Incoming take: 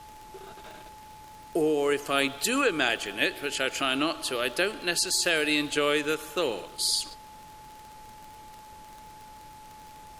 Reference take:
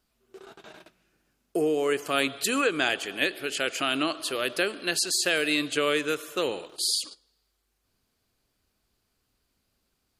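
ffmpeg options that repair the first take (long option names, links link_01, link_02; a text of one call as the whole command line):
ffmpeg -i in.wav -af "adeclick=threshold=4,bandreject=frequency=860:width=30,afftdn=noise_reduction=28:noise_floor=-48" out.wav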